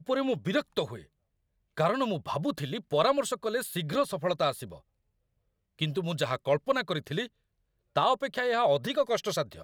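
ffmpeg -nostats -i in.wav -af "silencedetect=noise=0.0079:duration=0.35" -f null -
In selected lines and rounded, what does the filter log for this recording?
silence_start: 1.02
silence_end: 1.77 | silence_duration: 0.76
silence_start: 4.77
silence_end: 5.79 | silence_duration: 1.02
silence_start: 7.27
silence_end: 7.96 | silence_duration: 0.69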